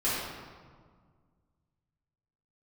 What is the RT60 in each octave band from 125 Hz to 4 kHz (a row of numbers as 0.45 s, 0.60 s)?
2.6 s, 2.3 s, 1.8 s, 1.7 s, 1.2 s, 1.0 s